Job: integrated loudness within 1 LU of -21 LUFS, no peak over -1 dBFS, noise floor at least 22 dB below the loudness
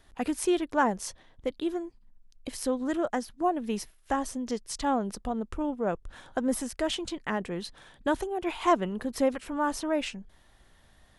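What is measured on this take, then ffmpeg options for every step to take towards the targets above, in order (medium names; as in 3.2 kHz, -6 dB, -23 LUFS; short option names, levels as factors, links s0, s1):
loudness -30.5 LUFS; peak level -12.0 dBFS; loudness target -21.0 LUFS
-> -af "volume=2.99"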